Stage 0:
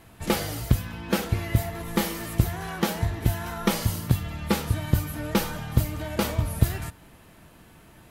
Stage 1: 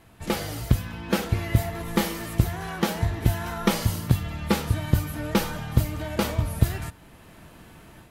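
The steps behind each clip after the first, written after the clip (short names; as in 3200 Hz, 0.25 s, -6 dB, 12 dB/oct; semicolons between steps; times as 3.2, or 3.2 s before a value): high shelf 9200 Hz -4 dB; AGC gain up to 6.5 dB; gain -2.5 dB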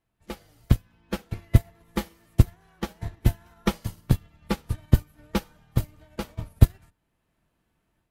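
octaver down 2 oct, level -5 dB; upward expander 2.5:1, over -32 dBFS; gain +4 dB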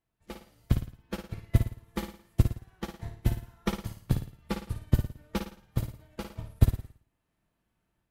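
flutter echo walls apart 9.5 m, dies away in 0.45 s; gain -6 dB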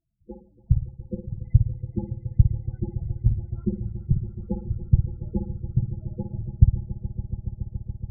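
loudest bins only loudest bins 8; swelling echo 0.141 s, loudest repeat 5, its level -17 dB; gain +6 dB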